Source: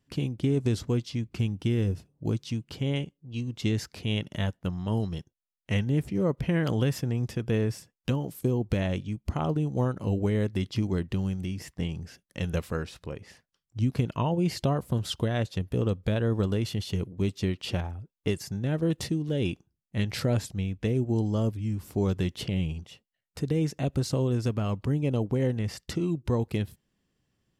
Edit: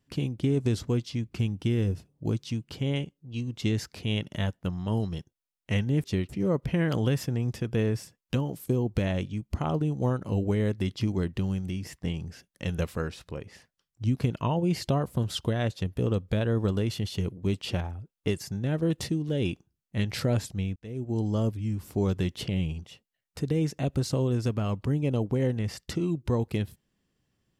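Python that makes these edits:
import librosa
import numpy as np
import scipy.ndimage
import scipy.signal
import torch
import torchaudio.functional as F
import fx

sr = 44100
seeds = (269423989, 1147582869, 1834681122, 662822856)

y = fx.edit(x, sr, fx.move(start_s=17.34, length_s=0.25, to_s=6.04),
    fx.fade_in_span(start_s=20.76, length_s=0.53), tone=tone)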